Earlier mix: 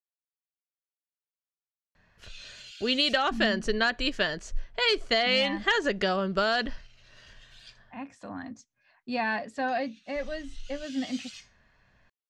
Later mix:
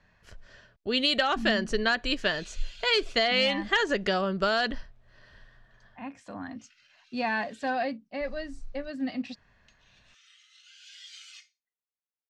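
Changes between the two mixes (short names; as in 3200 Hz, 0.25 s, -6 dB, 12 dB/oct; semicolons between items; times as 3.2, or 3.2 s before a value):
speech: entry -1.95 s; background: add tilt -1.5 dB/oct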